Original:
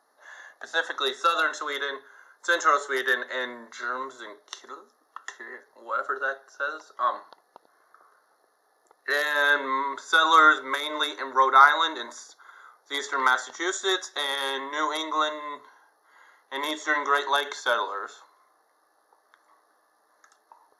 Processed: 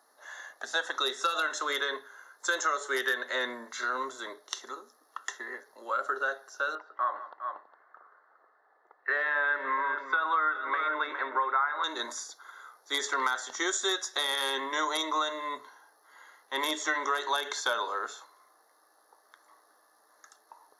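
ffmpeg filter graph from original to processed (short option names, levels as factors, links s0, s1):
-filter_complex "[0:a]asettb=1/sr,asplit=3[s0][s1][s2];[s0]atrim=end=6.754[s3];[s1]atrim=start=6.75:end=11.84,asetpts=PTS-STARTPTS,afade=t=in:d=0.004:c=qsin,afade=t=out:st=5.086:d=0.004:c=qsin,lowpass=f=2000:w=0.5412,lowpass=f=2000:w=1.3066,aemphasis=mode=production:type=riaa,aecho=1:1:163|410:0.106|0.266,atrim=end_sample=224469[s4];[s2]atrim=start=11.836[s5];[s3][s4]acrossfade=d=0.004:c1=hsin:c2=qsin[s6];[s6][s5]acrossfade=d=0.004:c1=qsin:c2=hsin,highpass=120,highshelf=f=3800:g=6.5,acompressor=threshold=0.0501:ratio=5"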